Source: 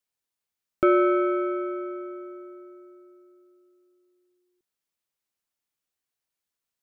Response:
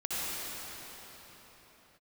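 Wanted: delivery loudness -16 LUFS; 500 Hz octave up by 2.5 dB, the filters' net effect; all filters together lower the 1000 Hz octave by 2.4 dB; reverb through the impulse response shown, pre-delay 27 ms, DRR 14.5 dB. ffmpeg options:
-filter_complex "[0:a]equalizer=f=500:t=o:g=5,equalizer=f=1k:t=o:g=-4.5,asplit=2[a][b];[1:a]atrim=start_sample=2205,adelay=27[c];[b][c]afir=irnorm=-1:irlink=0,volume=-22.5dB[d];[a][d]amix=inputs=2:normalize=0,volume=7.5dB"

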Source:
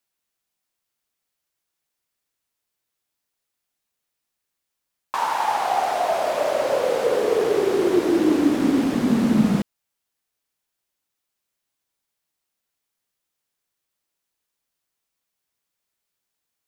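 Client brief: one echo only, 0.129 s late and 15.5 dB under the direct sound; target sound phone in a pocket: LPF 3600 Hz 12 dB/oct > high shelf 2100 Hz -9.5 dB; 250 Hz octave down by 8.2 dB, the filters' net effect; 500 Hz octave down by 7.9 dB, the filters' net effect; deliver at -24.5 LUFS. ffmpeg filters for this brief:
-af "lowpass=3.6k,equalizer=f=250:t=o:g=-8,equalizer=f=500:t=o:g=-7,highshelf=f=2.1k:g=-9.5,aecho=1:1:129:0.168,volume=3.5dB"

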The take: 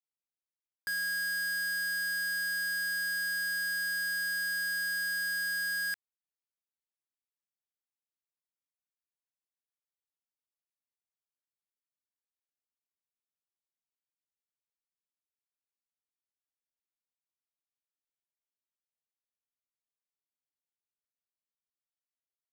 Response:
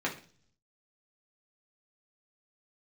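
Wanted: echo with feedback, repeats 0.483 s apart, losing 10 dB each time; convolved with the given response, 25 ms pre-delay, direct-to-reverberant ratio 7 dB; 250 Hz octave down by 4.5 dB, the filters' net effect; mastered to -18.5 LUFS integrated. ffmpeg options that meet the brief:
-filter_complex "[0:a]equalizer=f=250:t=o:g=-8.5,aecho=1:1:483|966|1449|1932:0.316|0.101|0.0324|0.0104,asplit=2[a][b];[1:a]atrim=start_sample=2205,adelay=25[c];[b][c]afir=irnorm=-1:irlink=0,volume=-14.5dB[d];[a][d]amix=inputs=2:normalize=0,volume=9dB"

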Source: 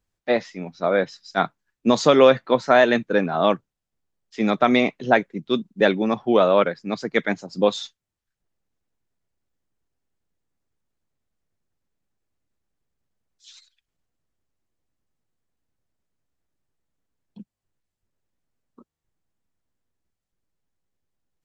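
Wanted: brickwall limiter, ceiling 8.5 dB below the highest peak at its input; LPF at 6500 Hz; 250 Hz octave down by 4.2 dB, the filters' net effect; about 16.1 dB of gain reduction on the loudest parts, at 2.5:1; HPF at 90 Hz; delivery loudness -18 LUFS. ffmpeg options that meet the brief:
-af "highpass=90,lowpass=6.5k,equalizer=f=250:t=o:g=-5,acompressor=threshold=-36dB:ratio=2.5,volume=20.5dB,alimiter=limit=-4.5dB:level=0:latency=1"

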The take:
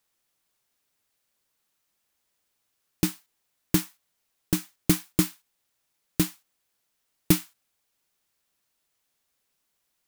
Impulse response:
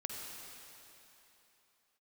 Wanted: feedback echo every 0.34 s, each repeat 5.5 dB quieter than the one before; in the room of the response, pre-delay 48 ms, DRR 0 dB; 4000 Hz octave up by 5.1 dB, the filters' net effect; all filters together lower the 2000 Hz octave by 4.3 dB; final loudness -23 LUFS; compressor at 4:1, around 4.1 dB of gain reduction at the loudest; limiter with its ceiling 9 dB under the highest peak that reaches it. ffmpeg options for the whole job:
-filter_complex "[0:a]equalizer=f=2k:t=o:g=-8.5,equalizer=f=4k:t=o:g=8.5,acompressor=threshold=-21dB:ratio=4,alimiter=limit=-15dB:level=0:latency=1,aecho=1:1:340|680|1020|1360|1700|2040|2380:0.531|0.281|0.149|0.079|0.0419|0.0222|0.0118,asplit=2[a][b];[1:a]atrim=start_sample=2205,adelay=48[c];[b][c]afir=irnorm=-1:irlink=0,volume=-0.5dB[d];[a][d]amix=inputs=2:normalize=0,volume=12dB"

